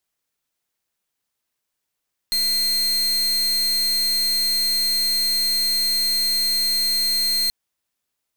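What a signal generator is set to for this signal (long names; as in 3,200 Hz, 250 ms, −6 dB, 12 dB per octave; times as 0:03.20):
pulse wave 4,190 Hz, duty 41% −20.5 dBFS 5.18 s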